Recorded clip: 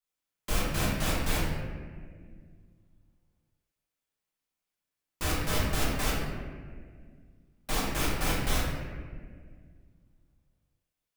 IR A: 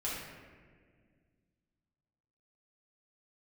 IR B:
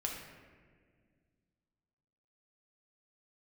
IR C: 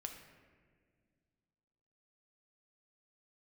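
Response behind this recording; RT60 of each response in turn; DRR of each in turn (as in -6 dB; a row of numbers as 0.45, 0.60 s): A; 1.8, 1.8, 1.9 s; -7.5, -1.0, 3.5 dB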